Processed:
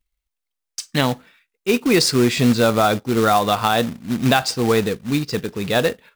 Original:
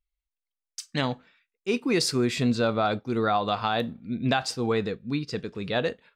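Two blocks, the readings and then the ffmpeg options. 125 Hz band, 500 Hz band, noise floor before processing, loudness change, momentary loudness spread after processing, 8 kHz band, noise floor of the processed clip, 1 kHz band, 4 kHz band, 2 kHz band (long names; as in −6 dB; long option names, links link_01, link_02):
+8.0 dB, +8.0 dB, below −85 dBFS, +8.5 dB, 9 LU, +10.0 dB, −82 dBFS, +8.0 dB, +8.5 dB, +8.5 dB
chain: -af "acrusher=bits=3:mode=log:mix=0:aa=0.000001,volume=8dB"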